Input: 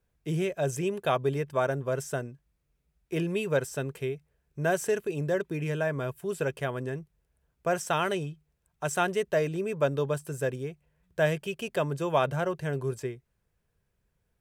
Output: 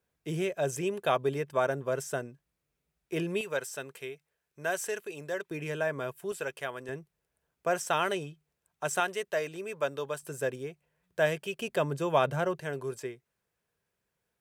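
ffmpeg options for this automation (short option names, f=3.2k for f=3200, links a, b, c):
-af "asetnsamples=n=441:p=0,asendcmd='3.41 highpass f 1000;5.51 highpass f 370;6.32 highpass f 890;6.89 highpass f 320;9 highpass f 840;10.23 highpass f 320;11.59 highpass f 120;12.6 highpass f 410',highpass=f=240:p=1"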